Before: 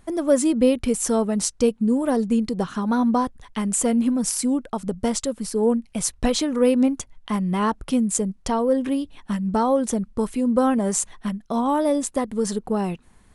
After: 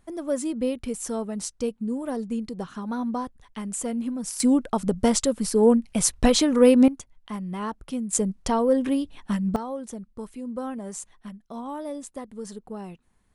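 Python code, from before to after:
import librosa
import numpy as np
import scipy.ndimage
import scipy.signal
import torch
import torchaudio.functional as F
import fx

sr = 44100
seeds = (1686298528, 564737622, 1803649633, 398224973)

y = fx.gain(x, sr, db=fx.steps((0.0, -8.5), (4.4, 2.5), (6.88, -9.0), (8.13, -0.5), (9.56, -13.0)))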